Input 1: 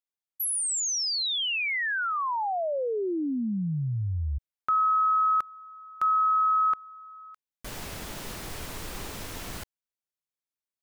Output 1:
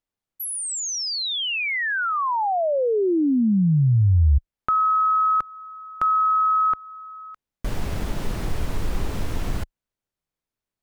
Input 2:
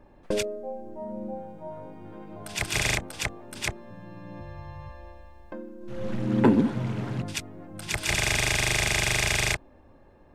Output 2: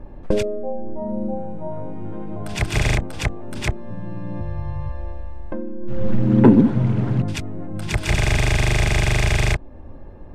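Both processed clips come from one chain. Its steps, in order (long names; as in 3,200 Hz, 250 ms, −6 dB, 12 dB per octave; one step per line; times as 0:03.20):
spectral tilt −2.5 dB per octave
in parallel at −1 dB: downward compressor, threshold −34 dBFS
on the sum: level +2.5 dB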